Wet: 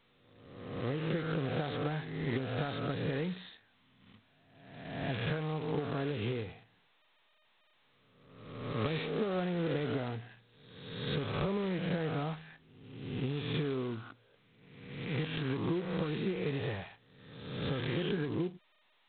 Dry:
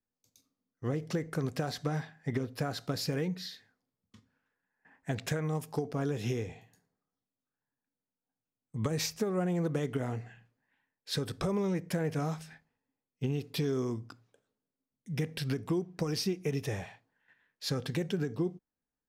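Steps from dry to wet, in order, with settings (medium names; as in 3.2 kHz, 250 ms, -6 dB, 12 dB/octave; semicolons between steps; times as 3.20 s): reverse spectral sustain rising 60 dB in 1.18 s; trim -4 dB; G.726 16 kbps 8 kHz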